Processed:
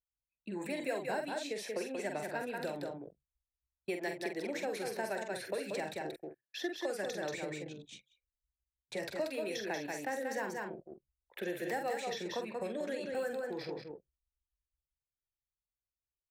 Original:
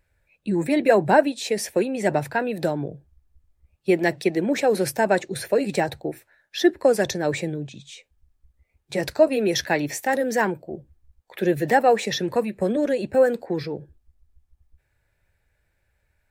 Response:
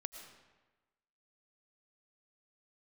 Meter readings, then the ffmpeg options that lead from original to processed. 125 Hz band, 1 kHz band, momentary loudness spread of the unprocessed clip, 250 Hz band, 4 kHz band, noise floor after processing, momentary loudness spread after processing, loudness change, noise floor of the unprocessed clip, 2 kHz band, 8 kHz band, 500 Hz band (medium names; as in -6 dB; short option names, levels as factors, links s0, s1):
-19.5 dB, -16.0 dB, 14 LU, -17.5 dB, -12.5 dB, under -85 dBFS, 11 LU, -16.0 dB, -72 dBFS, -13.0 dB, -14.0 dB, -16.0 dB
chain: -filter_complex "[0:a]highpass=f=340:p=1,asplit=2[s0][s1];[s1]adelay=45,volume=0.473[s2];[s0][s2]amix=inputs=2:normalize=0,asplit=2[s3][s4];[s4]aecho=0:1:183:0.501[s5];[s3][s5]amix=inputs=2:normalize=0,anlmdn=0.398,acrossover=split=480|1600|4200[s6][s7][s8][s9];[s6]acompressor=threshold=0.0224:ratio=4[s10];[s7]acompressor=threshold=0.0251:ratio=4[s11];[s8]acompressor=threshold=0.0126:ratio=4[s12];[s9]acompressor=threshold=0.00708:ratio=4[s13];[s10][s11][s12][s13]amix=inputs=4:normalize=0,volume=0.376"